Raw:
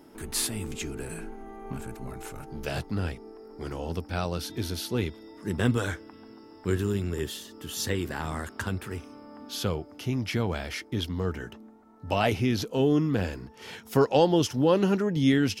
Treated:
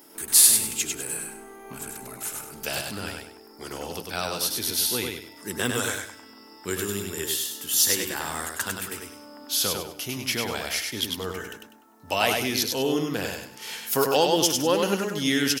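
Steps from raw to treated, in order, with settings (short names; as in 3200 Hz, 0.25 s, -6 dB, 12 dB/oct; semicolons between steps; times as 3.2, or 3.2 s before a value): RIAA curve recording; on a send: feedback echo 99 ms, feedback 30%, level -4 dB; on the sum: gain +1.5 dB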